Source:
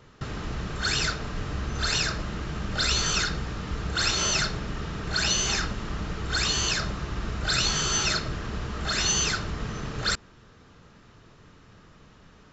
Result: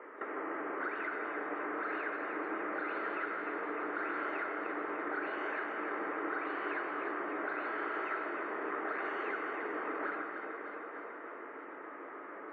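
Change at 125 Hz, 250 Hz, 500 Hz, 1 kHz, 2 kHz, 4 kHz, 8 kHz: under -35 dB, -6.0 dB, -1.0 dB, -2.0 dB, -6.0 dB, -33.0 dB, n/a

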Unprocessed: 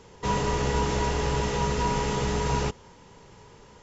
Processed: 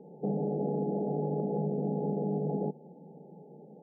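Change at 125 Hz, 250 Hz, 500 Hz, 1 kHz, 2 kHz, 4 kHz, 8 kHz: -6.0 dB, 0.0 dB, -3.0 dB, -13.0 dB, under -40 dB, under -40 dB, n/a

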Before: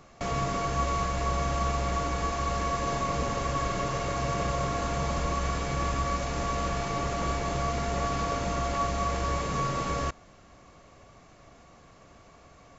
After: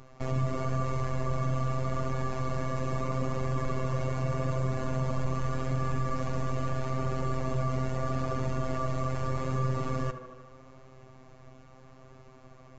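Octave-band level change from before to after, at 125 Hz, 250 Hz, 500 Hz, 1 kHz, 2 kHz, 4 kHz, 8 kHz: +3.0 dB, -0.5 dB, -2.5 dB, -7.0 dB, -6.5 dB, -11.0 dB, n/a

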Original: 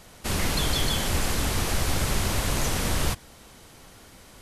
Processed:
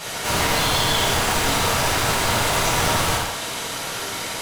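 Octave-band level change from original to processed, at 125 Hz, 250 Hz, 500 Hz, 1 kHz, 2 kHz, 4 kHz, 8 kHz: +1.5, +3.0, +8.5, +12.0, +10.0, +8.5, +7.0 dB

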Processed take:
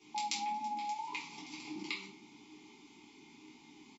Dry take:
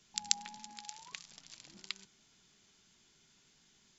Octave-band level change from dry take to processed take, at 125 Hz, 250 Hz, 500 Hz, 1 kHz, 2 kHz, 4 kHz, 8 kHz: +4.5 dB, +13.5 dB, +12.5 dB, +13.5 dB, +6.5 dB, -3.0 dB, n/a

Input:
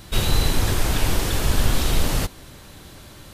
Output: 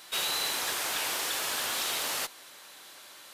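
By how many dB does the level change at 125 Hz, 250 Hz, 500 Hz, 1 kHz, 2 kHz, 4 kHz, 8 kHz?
-35.0, -21.0, -11.5, -5.5, -3.0, -2.5, -2.5 dB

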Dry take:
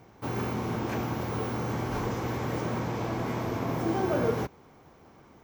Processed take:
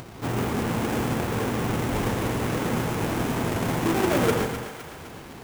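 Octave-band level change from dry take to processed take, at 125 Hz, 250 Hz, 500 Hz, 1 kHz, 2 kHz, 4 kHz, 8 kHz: +4.5, +5.5, +4.5, +4.5, +8.0, +9.5, +12.0 dB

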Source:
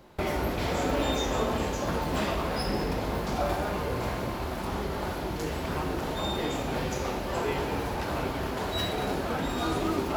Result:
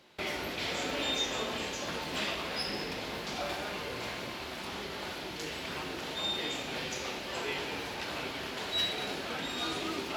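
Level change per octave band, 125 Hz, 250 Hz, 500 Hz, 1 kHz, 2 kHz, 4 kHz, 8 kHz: -14.0, -9.5, -8.5, -8.0, -0.5, +3.0, -1.0 dB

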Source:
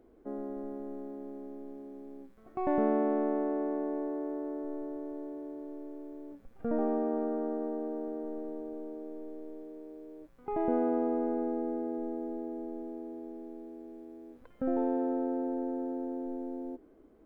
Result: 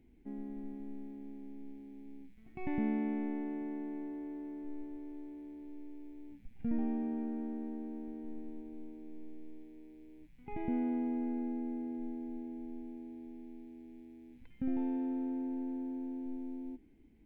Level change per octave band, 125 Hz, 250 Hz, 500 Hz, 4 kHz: +2.0 dB, -3.0 dB, -14.0 dB, n/a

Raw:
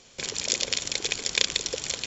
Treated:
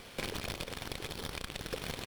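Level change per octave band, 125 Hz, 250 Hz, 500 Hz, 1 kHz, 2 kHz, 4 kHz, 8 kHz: +3.0 dB, -0.5 dB, -5.5 dB, -1.0 dB, -10.0 dB, -15.0 dB, n/a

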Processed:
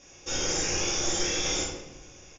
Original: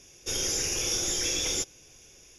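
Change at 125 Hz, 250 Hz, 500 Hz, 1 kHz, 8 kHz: +3.0, +4.5, +4.0, +8.0, -1.0 dB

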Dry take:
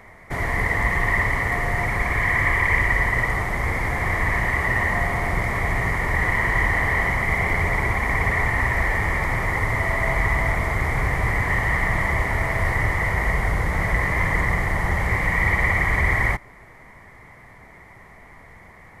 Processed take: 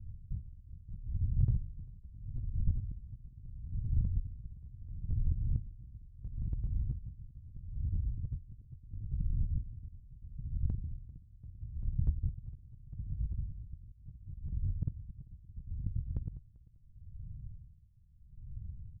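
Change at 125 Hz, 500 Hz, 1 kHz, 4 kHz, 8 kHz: -12.0 dB, under -40 dB, under -40 dB, under -40 dB, under -40 dB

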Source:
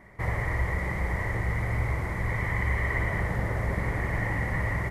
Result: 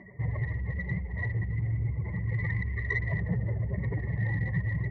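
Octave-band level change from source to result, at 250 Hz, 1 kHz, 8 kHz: -1.5 dB, -15.5 dB, under -20 dB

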